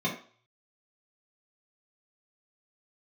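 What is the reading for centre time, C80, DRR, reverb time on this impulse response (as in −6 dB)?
23 ms, 12.0 dB, −6.0 dB, 0.45 s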